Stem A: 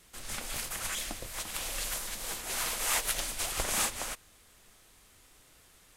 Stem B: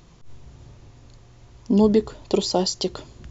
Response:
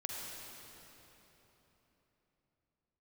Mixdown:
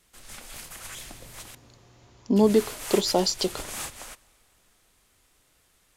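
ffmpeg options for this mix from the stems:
-filter_complex "[0:a]aeval=exprs='0.251*(cos(1*acos(clip(val(0)/0.251,-1,1)))-cos(1*PI/2))+0.0141*(cos(5*acos(clip(val(0)/0.251,-1,1)))-cos(5*PI/2))+0.00178*(cos(8*acos(clip(val(0)/0.251,-1,1)))-cos(8*PI/2))':c=same,volume=-7.5dB,asplit=3[a][b][c];[a]atrim=end=1.55,asetpts=PTS-STARTPTS,afade=t=out:st=1.546:d=0.004:c=hsin[d];[b]atrim=start=1.55:end=2.36,asetpts=PTS-STARTPTS,volume=0[e];[c]atrim=start=2.36,asetpts=PTS-STARTPTS,afade=t=in:d=0.004:c=hsin[f];[d][e][f]concat=n=3:v=0:a=1,asplit=2[g][h];[h]volume=-21.5dB[i];[1:a]highpass=f=200:p=1,adelay=600,volume=-0.5dB[j];[2:a]atrim=start_sample=2205[k];[i][k]afir=irnorm=-1:irlink=0[l];[g][j][l]amix=inputs=3:normalize=0"

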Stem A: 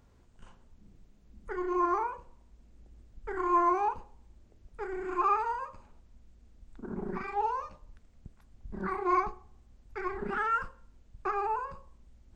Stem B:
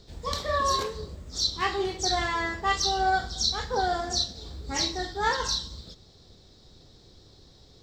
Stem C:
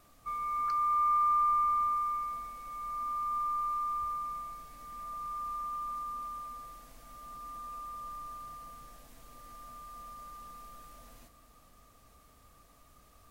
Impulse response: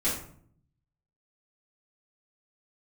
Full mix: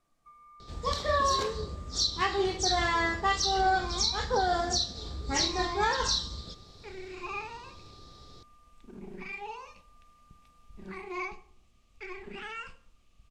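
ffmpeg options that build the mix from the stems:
-filter_complex "[0:a]highshelf=f=1.9k:t=q:w=3:g=10.5,adelay=2050,volume=-9dB,asplit=2[a][b];[b]volume=-20.5dB[c];[1:a]adelay=600,volume=1.5dB[d];[2:a]acompressor=threshold=-40dB:ratio=3,volume=-15.5dB,asplit=2[e][f];[f]volume=-15dB[g];[3:a]atrim=start_sample=2205[h];[c][g]amix=inputs=2:normalize=0[i];[i][h]afir=irnorm=-1:irlink=0[j];[a][d][e][j]amix=inputs=4:normalize=0,lowpass=9.6k,alimiter=limit=-17dB:level=0:latency=1:release=168"

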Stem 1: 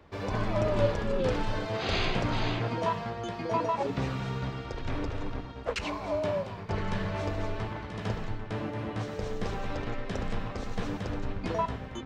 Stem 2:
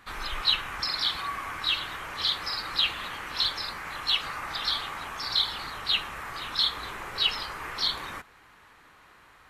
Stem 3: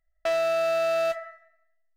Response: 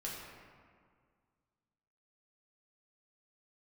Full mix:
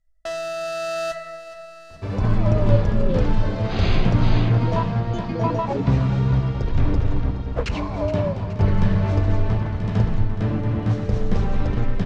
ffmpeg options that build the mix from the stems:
-filter_complex "[0:a]lowpass=f=2k:p=1,adelay=1900,volume=-8dB,asplit=2[a][b];[b]volume=-13.5dB[c];[2:a]bandreject=f=2.3k:w=7.2,volume=-5dB,asplit=3[d][e][f];[e]volume=-9.5dB[g];[f]volume=-17.5dB[h];[3:a]atrim=start_sample=2205[i];[g][i]afir=irnorm=-1:irlink=0[j];[c][h]amix=inputs=2:normalize=0,aecho=0:1:421|842|1263|1684|2105|2526|2947|3368:1|0.55|0.303|0.166|0.0915|0.0503|0.0277|0.0152[k];[a][d][j][k]amix=inputs=4:normalize=0,lowpass=9k,bass=f=250:g=11,treble=f=4k:g=8,dynaudnorm=f=560:g=5:m=13dB"

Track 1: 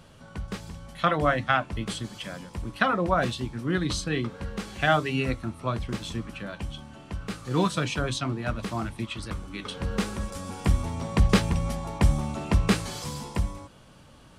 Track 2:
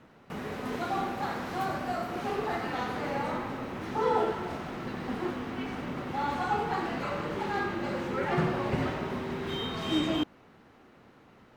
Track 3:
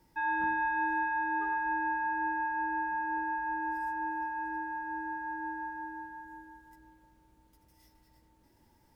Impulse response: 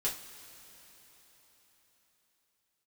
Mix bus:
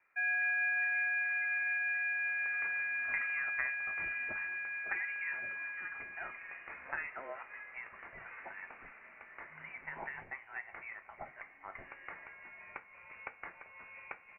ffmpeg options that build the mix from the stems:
-filter_complex "[0:a]acompressor=threshold=-27dB:ratio=10,adelay=2100,volume=-7dB,asplit=2[a][b];[b]volume=-10dB[c];[1:a]volume=-14.5dB[d];[2:a]volume=2dB[e];[3:a]atrim=start_sample=2205[f];[c][f]afir=irnorm=-1:irlink=0[g];[a][d][e][g]amix=inputs=4:normalize=0,highpass=f=1.1k:w=0.5412,highpass=f=1.1k:w=1.3066,lowpass=f=2.8k:t=q:w=0.5098,lowpass=f=2.8k:t=q:w=0.6013,lowpass=f=2.8k:t=q:w=0.9,lowpass=f=2.8k:t=q:w=2.563,afreqshift=-3300"

